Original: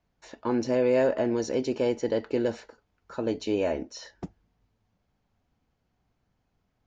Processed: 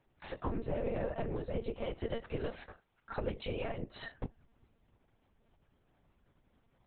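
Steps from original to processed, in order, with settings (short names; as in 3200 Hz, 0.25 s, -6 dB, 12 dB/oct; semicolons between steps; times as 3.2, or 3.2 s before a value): 1.73–3.79 low shelf 420 Hz -10.5 dB; compressor 8:1, threshold -37 dBFS, peak gain reduction 17 dB; whisperiser; monotone LPC vocoder at 8 kHz 230 Hz; gain +3.5 dB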